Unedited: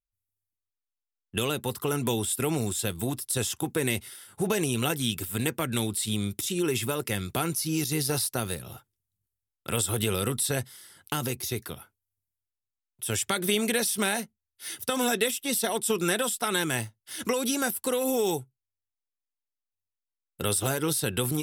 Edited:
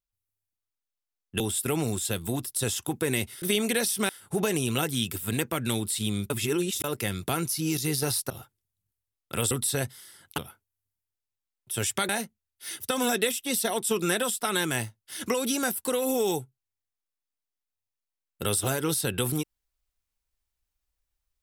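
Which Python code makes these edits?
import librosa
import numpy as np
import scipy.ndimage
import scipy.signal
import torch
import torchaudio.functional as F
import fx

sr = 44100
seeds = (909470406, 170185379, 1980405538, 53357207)

y = fx.edit(x, sr, fx.cut(start_s=1.4, length_s=0.74),
    fx.reverse_span(start_s=6.37, length_s=0.54),
    fx.cut(start_s=8.37, length_s=0.28),
    fx.cut(start_s=9.86, length_s=0.41),
    fx.cut(start_s=11.14, length_s=0.56),
    fx.move(start_s=13.41, length_s=0.67, to_s=4.16), tone=tone)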